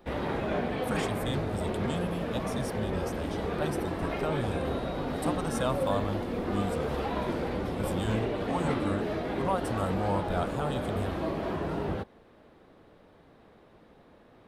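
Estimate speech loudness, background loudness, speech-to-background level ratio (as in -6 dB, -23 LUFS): -35.5 LUFS, -32.5 LUFS, -3.0 dB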